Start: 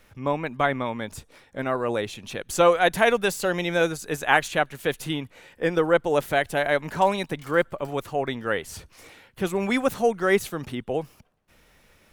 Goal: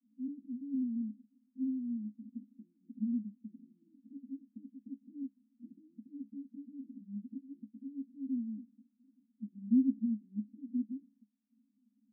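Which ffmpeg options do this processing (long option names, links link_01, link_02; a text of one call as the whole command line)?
ffmpeg -i in.wav -af "asuperpass=centerf=240:order=12:qfactor=3.4" out.wav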